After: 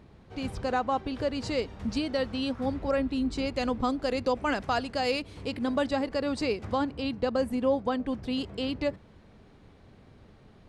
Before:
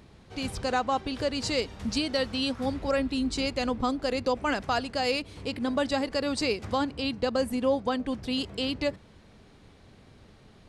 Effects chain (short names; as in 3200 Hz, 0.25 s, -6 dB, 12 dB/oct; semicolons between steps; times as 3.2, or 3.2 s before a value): high shelf 2900 Hz -11 dB, from 3.54 s -4 dB, from 5.86 s -9.5 dB